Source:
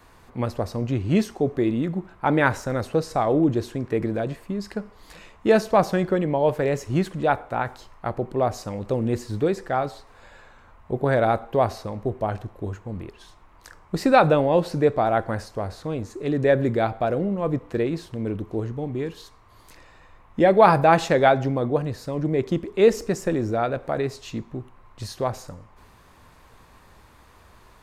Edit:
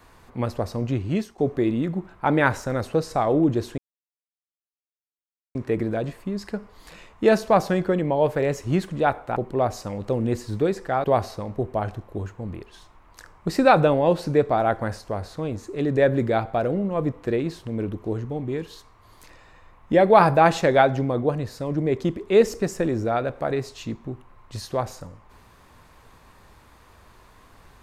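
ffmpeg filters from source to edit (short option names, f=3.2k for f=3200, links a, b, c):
-filter_complex "[0:a]asplit=5[a][b][c][d][e];[a]atrim=end=1.38,asetpts=PTS-STARTPTS,afade=t=out:st=0.93:d=0.45:silence=0.199526[f];[b]atrim=start=1.38:end=3.78,asetpts=PTS-STARTPTS,afade=t=in:d=0.004:c=hsin:silence=0.199526,afade=t=out:st=2.396:d=0.004:c=hsin,apad=pad_dur=1.77[g];[c]atrim=start=3.78:end=7.592,asetpts=PTS-STARTPTS,afade=t=in:d=0.004:c=hsin[h];[d]atrim=start=8.168:end=9.852[i];[e]atrim=start=11.508[j];[f][g][h]concat=n=3:v=0:a=1[k];[k][i]acrossfade=d=0.004:c1=hsin:c2=hsin[l];[l][j]acrossfade=d=0.004:c1=hsin:c2=hsin"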